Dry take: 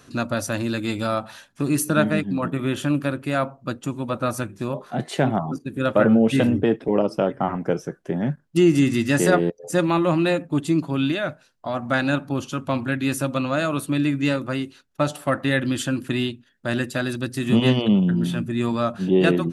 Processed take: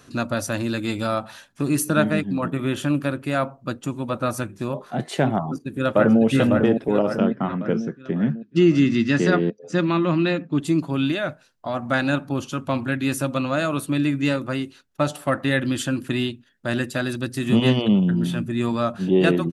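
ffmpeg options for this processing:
-filter_complex "[0:a]asplit=2[a][b];[b]afade=t=in:st=5.42:d=0.01,afade=t=out:st=6.22:d=0.01,aecho=0:1:550|1100|1650|2200|2750|3300|3850:0.562341|0.309288|0.170108|0.0935595|0.0514577|0.0283018|0.015566[c];[a][c]amix=inputs=2:normalize=0,asettb=1/sr,asplit=3[d][e][f];[d]atrim=end=7.194[g];[e]atrim=start=7.19:end=10.61,asetpts=PTS-STARTPTS,afade=t=in:d=0.004:c=qsin,afade=t=out:st=3.416:d=0.004:c=qsin,highpass=100,equalizer=f=210:t=q:w=4:g=6,equalizer=f=560:t=q:w=4:g=-5,equalizer=f=810:t=q:w=4:g=-8,lowpass=f=5.5k:w=0.5412,lowpass=f=5.5k:w=1.3066[h];[f]atrim=start=10.606[i];[g][h]acrossfade=d=0.004:c1=hsin:c2=qsin[j];[j][i]acrossfade=d=0.004:c1=qsin:c2=hsin"

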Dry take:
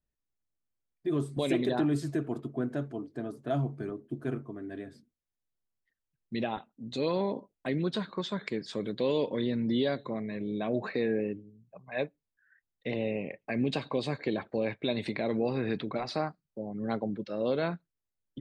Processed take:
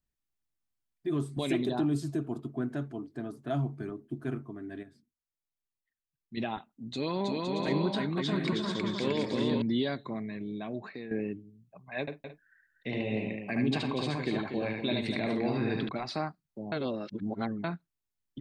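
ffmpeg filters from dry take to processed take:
-filter_complex "[0:a]asettb=1/sr,asplit=3[a][b][c];[a]atrim=end=1.624[d];[b]atrim=start=1.62:end=2.45,asetpts=PTS-STARTPTS,afade=t=in:d=0.004:c=qsin,afade=t=out:st=0.826:d=0.004:c=qsin,equalizer=f=1.9k:w=1.9:g=-9.5[e];[c]atrim=start=2.446[f];[d][e]acrossfade=d=0.004:c1=hsin:c2=qsin[g];[g][f]acrossfade=d=0.004:c1=qsin:c2=hsin,asettb=1/sr,asplit=3[h][i][j];[h]atrim=end=6.924[k];[i]atrim=start=6.92:end=9.62,asetpts=PTS-STARTPTS,afade=t=in:d=0.004:c=qsin,afade=t=out:st=2.696:d=0.004:c=qsin,aecho=1:1:320|512|627.2|696.3|737.8|762.7:0.794|0.631|0.501|0.398|0.316|0.251,atrim=end_sample=119070[l];[j]atrim=start=9.616[m];[k][l]acrossfade=d=0.004:c1=hsin:c2=qsin[n];[n][m]acrossfade=d=0.004:c1=qsin:c2=hsin,asettb=1/sr,asplit=3[o][p][q];[o]atrim=end=12.004[r];[p]atrim=start=12:end=15.89,asetpts=PTS-STARTPTS,afade=t=in:d=0.004:c=qsin,afade=t=out:st=3.886:d=0.004:c=qsin,aecho=1:1:74|120|241|256|260|296:0.708|0.141|0.398|0.15|0.126|0.15,atrim=end_sample=171549[s];[q]atrim=start=15.886[t];[r][s]acrossfade=d=0.004:c1=hsin:c2=qsin[u];[u][t]acrossfade=d=0.004:c1=qsin:c2=hsin,asplit=6[v][w][x][y][z][aa];[v]atrim=end=4.832[ab];[w]atrim=start=4.828:end=6.372,asetpts=PTS-STARTPTS,volume=-7.5dB[ac];[x]atrim=start=6.368:end=11.11,asetpts=PTS-STARTPTS,afade=t=out:st=3.782:d=0.96:silence=0.266073[ad];[y]atrim=start=11.11:end=16.722,asetpts=PTS-STARTPTS,afade=t=in:d=0.004:c=hsin:silence=0.266073[ae];[z]atrim=start=16.718:end=17.642,asetpts=PTS-STARTPTS,areverse[af];[aa]atrim=start=17.638[ag];[ab][ac]acrossfade=d=0.004:c1=hsin:c2=hsin[ah];[ad][ae]concat=n=2:v=0:a=1[ai];[ah][ai]acrossfade=d=0.004:c1=hsin:c2=hsin[aj];[aj][af]acrossfade=d=0.004:c1=hsin:c2=hsin[ak];[ak][ag]acrossfade=d=0.004:c1=hsin:c2=hsin,equalizer=f=510:w=3.4:g=-9"

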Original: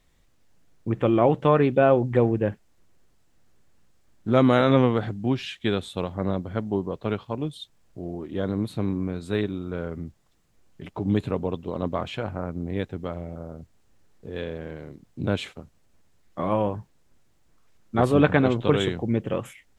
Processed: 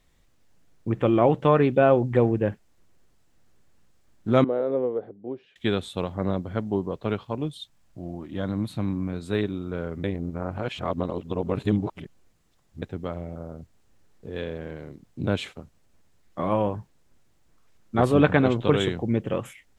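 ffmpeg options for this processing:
-filter_complex "[0:a]asettb=1/sr,asplit=3[a][b][c];[a]atrim=end=4.444[d];[b]atrim=start=4.44:end=5.56,asetpts=PTS-STARTPTS,afade=t=in:d=0.004:c=qsin,afade=t=out:st=1.116:d=0.004:c=qsin,bandpass=f=460:t=q:w=3.4[e];[c]atrim=start=5.556[f];[d][e]acrossfade=d=0.004:c1=hsin:c2=qsin[g];[g][f]acrossfade=d=0.004:c1=qsin:c2=hsin,asettb=1/sr,asplit=3[h][i][j];[h]atrim=end=7.534[k];[i]atrim=start=7.53:end=9.13,asetpts=PTS-STARTPTS,afade=t=in:d=0.004:c=qsin,afade=t=out:st=1.596:d=0.004:c=qsin,equalizer=f=420:t=o:w=0.42:g=-10.5[l];[j]atrim=start=9.126[m];[k][l]acrossfade=d=0.004:c1=hsin:c2=qsin[n];[n][m]acrossfade=d=0.004:c1=qsin:c2=hsin,asplit=3[o][p][q];[o]atrim=end=10.042[r];[p]atrim=start=10.038:end=12.822,asetpts=PTS-STARTPTS,areverse[s];[q]atrim=start=12.818[t];[r][s]acrossfade=d=0.004:c1=hsin:c2=hsin[u];[u][t]acrossfade=d=0.004:c1=hsin:c2=hsin"

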